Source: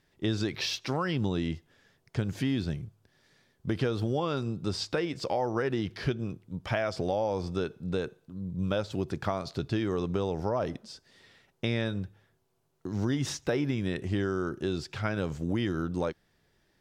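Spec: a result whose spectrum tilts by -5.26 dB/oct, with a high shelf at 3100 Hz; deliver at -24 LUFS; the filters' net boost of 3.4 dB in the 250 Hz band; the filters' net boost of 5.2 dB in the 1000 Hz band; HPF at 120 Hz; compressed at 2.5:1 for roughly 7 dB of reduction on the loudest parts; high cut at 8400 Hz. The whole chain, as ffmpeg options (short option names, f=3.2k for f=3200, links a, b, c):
-af "highpass=120,lowpass=8.4k,equalizer=f=250:t=o:g=4.5,equalizer=f=1k:t=o:g=6,highshelf=f=3.1k:g=6,acompressor=threshold=-32dB:ratio=2.5,volume=11dB"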